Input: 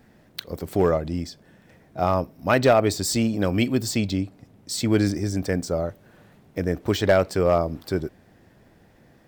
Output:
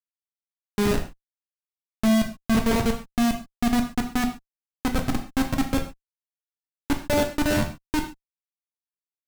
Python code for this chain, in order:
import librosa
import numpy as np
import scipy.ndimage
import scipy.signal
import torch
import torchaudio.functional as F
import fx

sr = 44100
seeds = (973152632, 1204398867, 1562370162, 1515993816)

p1 = fx.vocoder_glide(x, sr, note=55, semitones=9)
p2 = fx.rider(p1, sr, range_db=10, speed_s=0.5)
p3 = p1 + F.gain(torch.from_numpy(p2), 0.0).numpy()
p4 = fx.schmitt(p3, sr, flips_db=-13.0)
p5 = fx.rev_gated(p4, sr, seeds[0], gate_ms=160, shape='falling', drr_db=3.0)
y = F.gain(torch.from_numpy(p5), -1.5).numpy()